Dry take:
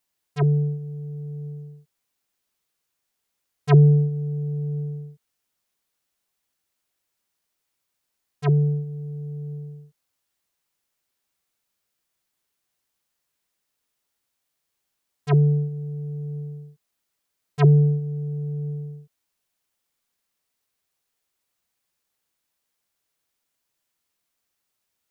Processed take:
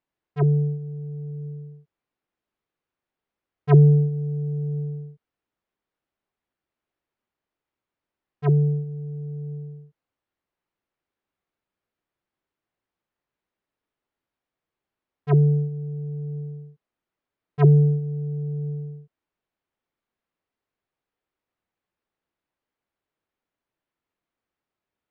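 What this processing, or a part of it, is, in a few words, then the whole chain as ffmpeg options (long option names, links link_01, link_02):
phone in a pocket: -filter_complex "[0:a]lowpass=3200,equalizer=frequency=330:width_type=o:width=0.77:gain=3,highshelf=frequency=2300:gain=-10,asettb=1/sr,asplit=3[link_01][link_02][link_03];[link_01]atrim=end=1.314[link_04];[link_02]atrim=start=1.31:end=1.72,asetpts=PTS-STARTPTS,afade=type=in:duration=0.004:curve=qsin,afade=type=out:start_time=0.406:duration=0.004:curve=qsin,equalizer=frequency=680:width_type=o:width=0.34:gain=-7.5[link_05];[link_03]atrim=start=1.716[link_06];[link_04][link_05]acrossfade=duration=0.004:curve1=hsin:curve2=qsin[link_07];[link_07][link_06]acrossfade=duration=0.004:curve1=qsin:curve2=hsin"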